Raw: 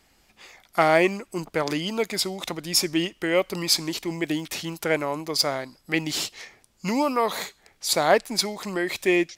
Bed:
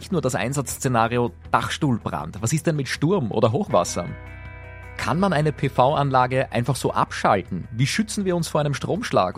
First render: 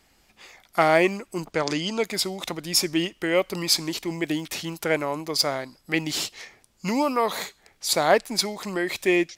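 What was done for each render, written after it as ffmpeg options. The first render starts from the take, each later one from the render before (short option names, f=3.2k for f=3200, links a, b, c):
-filter_complex "[0:a]asettb=1/sr,asplit=3[a][b][c];[a]atrim=end=1.524[d];[b]atrim=start=1.52:end=2.03,asetpts=PTS-STARTPTS,afade=t=in:d=0.004:c=qsin,afade=t=out:st=0.506:d=0.004:c=qsin,lowpass=f=6.8k:t=q:w=1.6[e];[c]atrim=start=2.026[f];[d][e]acrossfade=d=0.004:c1=hsin:c2=qsin[g];[g][f]acrossfade=d=0.004:c1=qsin:c2=hsin"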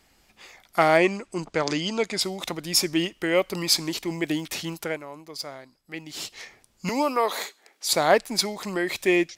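-filter_complex "[0:a]asettb=1/sr,asplit=3[a][b][c];[a]atrim=end=0.974[d];[b]atrim=start=0.97:end=2.21,asetpts=PTS-STARTPTS,afade=t=in:d=0.004:c=qsin,afade=t=out:st=1.236:d=0.004:c=qsin,lowpass=f=9k:w=0.5412,lowpass=f=9k:w=1.3066[e];[c]atrim=start=2.206[f];[d][e]acrossfade=d=0.004:c1=hsin:c2=qsin[g];[g][f]acrossfade=d=0.004:c1=qsin:c2=hsin,asettb=1/sr,asplit=3[h][i][j];[h]atrim=end=6.894[k];[i]atrim=start=6.89:end=7.89,asetpts=PTS-STARTPTS,afade=t=in:d=0.004:c=qsin,afade=t=out:st=0.996:d=0.004:c=qsin,highpass=f=270:w=0.5412,highpass=f=270:w=1.3066[l];[j]atrim=start=7.886[m];[k][l]acrossfade=d=0.004:c1=hsin:c2=qsin[n];[n][m]acrossfade=d=0.004:c1=qsin:c2=hsin,asplit=3[o][p][q];[o]atrim=end=4.99,asetpts=PTS-STARTPTS,afade=t=out:st=4.74:d=0.25:silence=0.251189[r];[p]atrim=start=4.99:end=6.13,asetpts=PTS-STARTPTS,volume=-12dB[s];[q]atrim=start=6.13,asetpts=PTS-STARTPTS,afade=t=in:d=0.25:silence=0.251189[t];[r][s][t]concat=n=3:v=0:a=1"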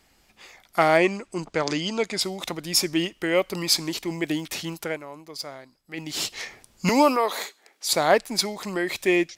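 -filter_complex "[0:a]asplit=3[a][b][c];[a]afade=t=out:st=5.97:d=0.02[d];[b]acontrast=67,afade=t=in:st=5.97:d=0.02,afade=t=out:st=7.15:d=0.02[e];[c]afade=t=in:st=7.15:d=0.02[f];[d][e][f]amix=inputs=3:normalize=0"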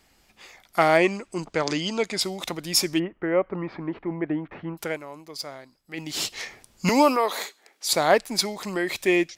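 -filter_complex "[0:a]asplit=3[a][b][c];[a]afade=t=out:st=2.98:d=0.02[d];[b]lowpass=f=1.7k:w=0.5412,lowpass=f=1.7k:w=1.3066,afade=t=in:st=2.98:d=0.02,afade=t=out:st=4.77:d=0.02[e];[c]afade=t=in:st=4.77:d=0.02[f];[d][e][f]amix=inputs=3:normalize=0"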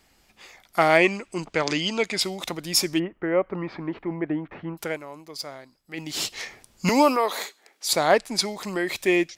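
-filter_complex "[0:a]asettb=1/sr,asplit=3[a][b][c];[a]atrim=end=0.904[d];[b]atrim=start=0.9:end=2.35,asetpts=PTS-STARTPTS,afade=t=in:d=0.004:c=qsin,afade=t=out:st=1.446:d=0.004:c=qsin,equalizer=f=2.5k:t=o:w=1:g=5[e];[c]atrim=start=2.346[f];[d][e]acrossfade=d=0.004:c1=hsin:c2=qsin[g];[g][f]acrossfade=d=0.004:c1=qsin:c2=hsin,asettb=1/sr,asplit=3[h][i][j];[h]atrim=end=3.494[k];[i]atrim=start=3.49:end=4.2,asetpts=PTS-STARTPTS,afade=t=in:d=0.004:c=qsin,afade=t=out:st=0.706:d=0.004:c=qsin,highshelf=f=3.4k:g=7.5[l];[j]atrim=start=4.196[m];[k][l]acrossfade=d=0.004:c1=hsin:c2=qsin[n];[n][m]acrossfade=d=0.004:c1=qsin:c2=hsin,asettb=1/sr,asplit=3[o][p][q];[o]atrim=end=7.964[r];[p]atrim=start=7.96:end=8.48,asetpts=PTS-STARTPTS,afade=t=in:d=0.004:c=qsin,afade=t=out:st=0.516:d=0.004:c=qsin,lowpass=11k[s];[q]atrim=start=8.476[t];[r][s]acrossfade=d=0.004:c1=hsin:c2=qsin[u];[u][t]acrossfade=d=0.004:c1=qsin:c2=hsin"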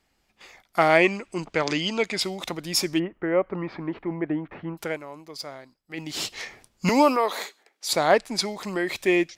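-af "agate=range=-8dB:threshold=-52dB:ratio=16:detection=peak,highshelf=f=5.6k:g=-5"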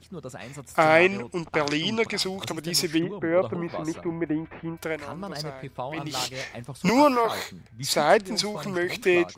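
-filter_complex "[1:a]volume=-16dB[a];[0:a][a]amix=inputs=2:normalize=0"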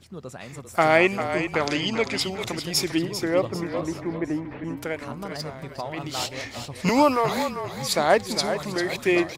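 -filter_complex "[0:a]asplit=5[a][b][c][d][e];[b]adelay=396,afreqshift=-33,volume=-9dB[f];[c]adelay=792,afreqshift=-66,volume=-17.9dB[g];[d]adelay=1188,afreqshift=-99,volume=-26.7dB[h];[e]adelay=1584,afreqshift=-132,volume=-35.6dB[i];[a][f][g][h][i]amix=inputs=5:normalize=0"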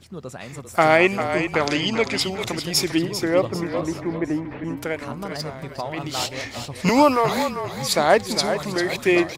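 -af "volume=3dB,alimiter=limit=-3dB:level=0:latency=1"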